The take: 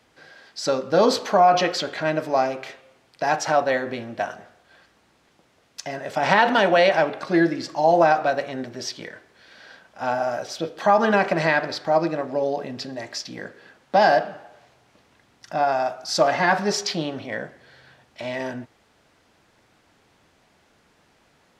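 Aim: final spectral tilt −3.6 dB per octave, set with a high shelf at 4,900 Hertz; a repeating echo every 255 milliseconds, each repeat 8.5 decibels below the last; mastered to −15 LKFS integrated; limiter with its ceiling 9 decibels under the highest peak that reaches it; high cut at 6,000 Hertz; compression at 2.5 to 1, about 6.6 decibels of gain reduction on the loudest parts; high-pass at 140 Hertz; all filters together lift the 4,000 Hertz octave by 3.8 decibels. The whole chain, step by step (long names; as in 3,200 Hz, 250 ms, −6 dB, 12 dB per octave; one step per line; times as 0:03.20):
high-pass filter 140 Hz
low-pass filter 6,000 Hz
parametric band 4,000 Hz +8.5 dB
high-shelf EQ 4,900 Hz −5 dB
downward compressor 2.5 to 1, threshold −22 dBFS
brickwall limiter −16.5 dBFS
repeating echo 255 ms, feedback 38%, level −8.5 dB
level +12.5 dB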